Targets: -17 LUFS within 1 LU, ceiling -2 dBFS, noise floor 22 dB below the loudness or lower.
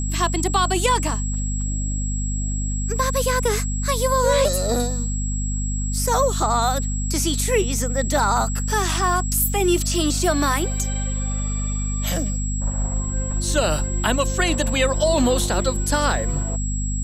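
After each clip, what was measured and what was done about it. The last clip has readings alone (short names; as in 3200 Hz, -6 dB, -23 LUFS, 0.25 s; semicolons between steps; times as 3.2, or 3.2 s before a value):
hum 50 Hz; harmonics up to 250 Hz; hum level -22 dBFS; steady tone 7700 Hz; tone level -30 dBFS; loudness -21.5 LUFS; peak -6.0 dBFS; loudness target -17.0 LUFS
-> de-hum 50 Hz, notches 5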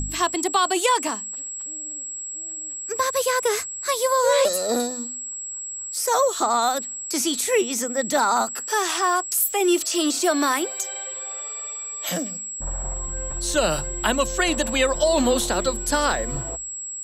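hum none; steady tone 7700 Hz; tone level -30 dBFS
-> notch 7700 Hz, Q 30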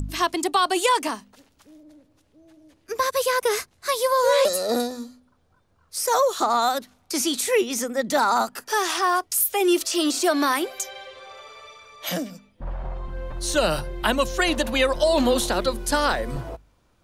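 steady tone none; loudness -22.5 LUFS; peak -8.5 dBFS; loudness target -17.0 LUFS
-> gain +5.5 dB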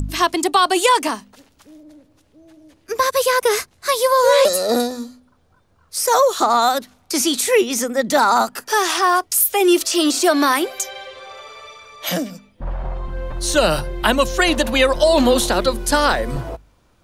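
loudness -17.0 LUFS; peak -3.0 dBFS; noise floor -58 dBFS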